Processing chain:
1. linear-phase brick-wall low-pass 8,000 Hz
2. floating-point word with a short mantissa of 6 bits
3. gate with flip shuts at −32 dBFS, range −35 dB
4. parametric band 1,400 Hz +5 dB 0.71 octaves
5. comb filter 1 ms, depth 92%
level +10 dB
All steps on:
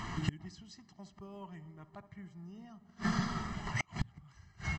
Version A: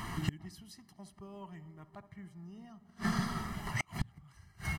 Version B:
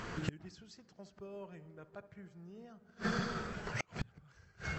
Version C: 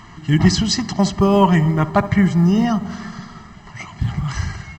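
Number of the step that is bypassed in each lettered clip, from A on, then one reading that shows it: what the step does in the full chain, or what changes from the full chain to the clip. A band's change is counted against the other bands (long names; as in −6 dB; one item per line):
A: 1, 8 kHz band +1.5 dB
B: 5, 500 Hz band +8.0 dB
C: 3, change in momentary loudness spread −2 LU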